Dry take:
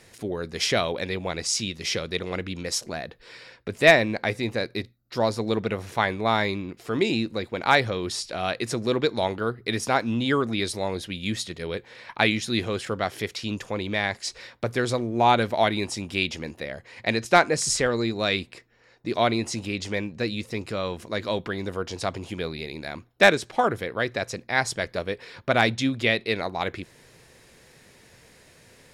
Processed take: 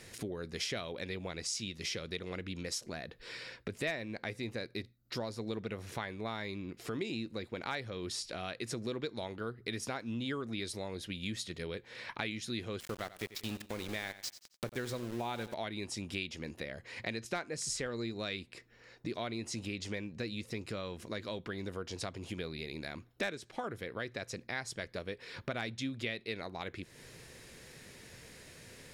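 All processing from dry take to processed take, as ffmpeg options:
ffmpeg -i in.wav -filter_complex "[0:a]asettb=1/sr,asplit=3[link_01][link_02][link_03];[link_01]atrim=end=12.804[link_04];[link_02]atrim=start=12.8:end=15.54,asetpts=PTS-STARTPTS,afade=type=in:duration=0.004:curve=qsin,afade=type=out:start_time=2.736:duration=0.004:curve=qsin,aeval=exprs='val(0)*gte(abs(val(0)),0.0299)':channel_layout=same,aecho=1:1:90|180|270:0.15|0.0419|0.0117,atrim=end_sample=120834[link_05];[link_03]atrim=start=15.536[link_06];[link_04][link_05]acrossfade=duration=0.004:curve1=hsin:curve2=qsin[link_07];[link_07][link_06]acrossfade=duration=0.004:curve1=qsin:curve2=hsin,acompressor=threshold=-40dB:ratio=3,equalizer=frequency=820:width_type=o:width=1.2:gain=-4.5,volume=1dB" out.wav

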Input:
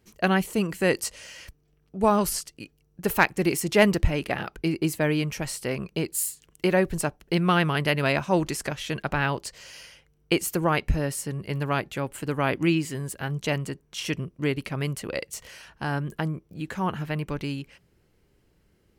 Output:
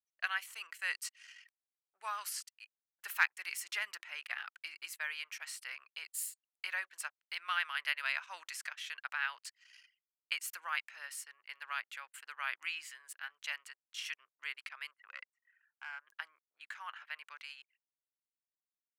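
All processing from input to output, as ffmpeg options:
ffmpeg -i in.wav -filter_complex "[0:a]asettb=1/sr,asplit=3[link_01][link_02][link_03];[link_01]atrim=end=3.784[link_04];[link_02]atrim=start=3.78:end=4.21,asetpts=PTS-STARTPTS,afade=type=in:duration=0.004:curve=qsin,afade=type=out:start_time=0.426:duration=0.004:curve=qsin,equalizer=frequency=160:width_type=o:width=2.2:gain=8.5,acompressor=threshold=-15dB:ratio=4:attack=3.2:release=140:knee=1:detection=peak[link_05];[link_03]atrim=start=4.206[link_06];[link_04][link_05]acrossfade=duration=0.004:curve1=hsin:curve2=qsin[link_07];[link_07][link_06]acrossfade=duration=0.004:curve1=qsin:curve2=hsin,asettb=1/sr,asplit=3[link_08][link_09][link_10];[link_08]atrim=end=14.914[link_11];[link_09]atrim=start=14.91:end=16.07,asetpts=PTS-STARTPTS,afade=type=in:duration=0.004:curve=qsin,afade=type=out:start_time=1.156:duration=0.004:curve=qsin,acrossover=split=410 2400:gain=0.178 1 0.112[link_12][link_13][link_14];[link_12][link_13][link_14]amix=inputs=3:normalize=0,aeval=exprs='clip(val(0),-1,0.0376)':channel_layout=same[link_15];[link_10]atrim=start=16.066[link_16];[link_11][link_15]acrossfade=duration=0.004:curve1=hsin:curve2=qsin[link_17];[link_17][link_16]acrossfade=duration=0.004:curve1=qsin:curve2=hsin,anlmdn=0.158,highpass=frequency=1400:width=0.5412,highpass=frequency=1400:width=1.3066,highshelf=frequency=2900:gain=-9,volume=-3.5dB" out.wav

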